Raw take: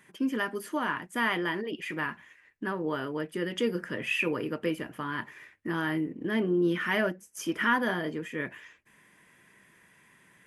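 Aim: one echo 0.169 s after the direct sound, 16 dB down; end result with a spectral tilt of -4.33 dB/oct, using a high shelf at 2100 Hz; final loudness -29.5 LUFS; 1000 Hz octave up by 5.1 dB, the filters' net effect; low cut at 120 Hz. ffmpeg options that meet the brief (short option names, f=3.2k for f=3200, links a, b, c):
-af "highpass=120,equalizer=f=1k:t=o:g=5,highshelf=f=2.1k:g=4,aecho=1:1:169:0.158,volume=-1dB"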